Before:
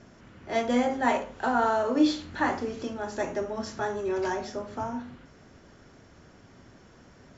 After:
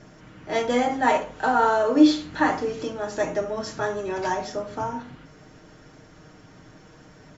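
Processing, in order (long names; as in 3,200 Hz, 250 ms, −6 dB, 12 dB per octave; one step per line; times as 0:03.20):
comb filter 6.5 ms, depth 54%
level +3.5 dB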